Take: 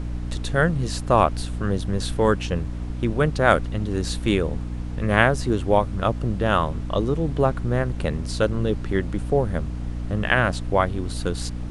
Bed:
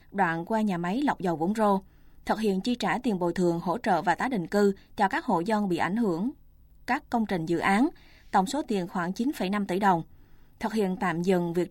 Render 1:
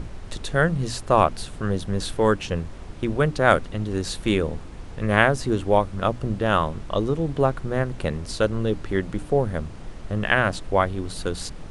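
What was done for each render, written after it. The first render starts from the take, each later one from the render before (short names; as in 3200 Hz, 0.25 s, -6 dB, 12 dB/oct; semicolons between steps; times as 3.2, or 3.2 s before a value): notches 60/120/180/240/300 Hz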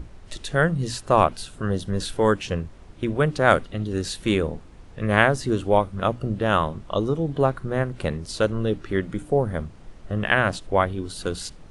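noise print and reduce 8 dB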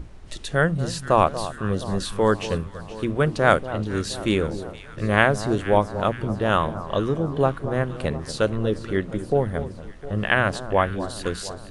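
echo with dull and thin repeats by turns 0.236 s, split 1200 Hz, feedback 74%, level -12.5 dB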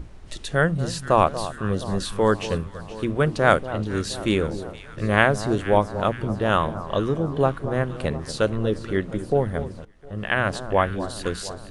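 9.85–10.58 fade in, from -19 dB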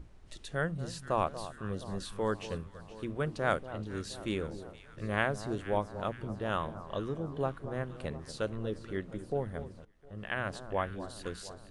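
gain -12.5 dB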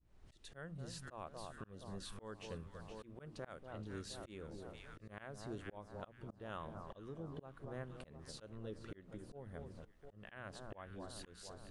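auto swell 0.45 s; compressor 2:1, threshold -49 dBFS, peak gain reduction 10.5 dB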